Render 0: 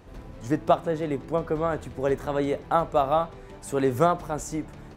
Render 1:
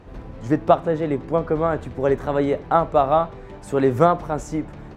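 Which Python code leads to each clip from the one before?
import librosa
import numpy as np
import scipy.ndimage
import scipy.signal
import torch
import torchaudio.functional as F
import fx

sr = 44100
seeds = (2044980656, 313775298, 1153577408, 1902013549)

y = fx.lowpass(x, sr, hz=2500.0, slope=6)
y = y * 10.0 ** (5.5 / 20.0)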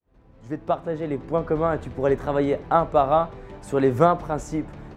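y = fx.fade_in_head(x, sr, length_s=1.55)
y = y * 10.0 ** (-1.5 / 20.0)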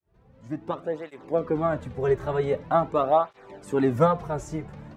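y = fx.flanger_cancel(x, sr, hz=0.45, depth_ms=4.2)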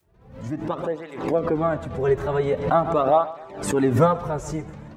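y = fx.echo_feedback(x, sr, ms=132, feedback_pct=40, wet_db=-17.0)
y = fx.pre_swell(y, sr, db_per_s=87.0)
y = y * 10.0 ** (2.0 / 20.0)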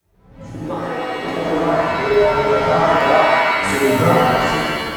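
y = fx.buffer_crackle(x, sr, first_s=0.5, period_s=0.82, block=2048, kind='zero')
y = fx.rev_shimmer(y, sr, seeds[0], rt60_s=1.7, semitones=7, shimmer_db=-2, drr_db=-6.5)
y = y * 10.0 ** (-3.0 / 20.0)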